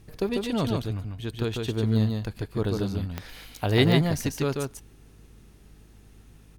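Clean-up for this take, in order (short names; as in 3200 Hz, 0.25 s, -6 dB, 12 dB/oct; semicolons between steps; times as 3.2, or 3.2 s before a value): de-click; de-hum 51.4 Hz, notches 7; inverse comb 0.145 s -3.5 dB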